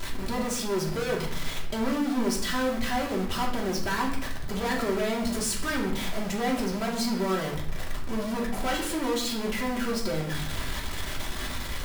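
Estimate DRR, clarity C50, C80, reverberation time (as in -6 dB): -3.0 dB, 6.0 dB, 9.5 dB, 0.60 s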